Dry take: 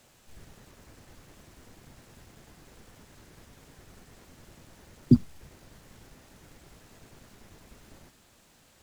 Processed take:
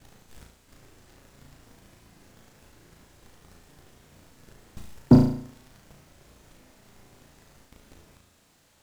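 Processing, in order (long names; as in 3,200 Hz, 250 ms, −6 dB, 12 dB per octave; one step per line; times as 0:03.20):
slices reordered back to front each 227 ms, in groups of 3
leveller curve on the samples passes 2
on a send: flutter between parallel walls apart 6.1 metres, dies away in 0.58 s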